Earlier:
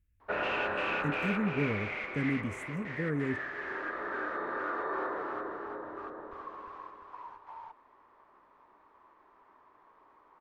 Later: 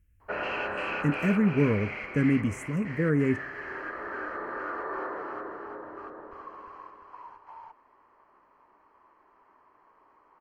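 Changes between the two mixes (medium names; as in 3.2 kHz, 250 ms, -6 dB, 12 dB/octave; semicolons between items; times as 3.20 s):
speech +8.0 dB; master: add Butterworth band-stop 3.6 kHz, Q 5.2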